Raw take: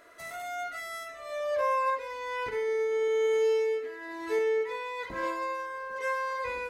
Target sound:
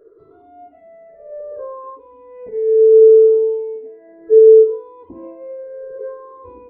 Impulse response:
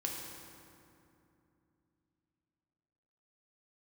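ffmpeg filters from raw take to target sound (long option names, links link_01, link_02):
-af "afftfilt=real='re*pow(10,20/40*sin(2*PI*(0.58*log(max(b,1)*sr/1024/100)/log(2)-(-0.67)*(pts-256)/sr)))':imag='im*pow(10,20/40*sin(2*PI*(0.58*log(max(b,1)*sr/1024/100)/log(2)-(-0.67)*(pts-256)/sr)))':win_size=1024:overlap=0.75,lowpass=frequency=430:width_type=q:width=4.9,volume=-1.5dB"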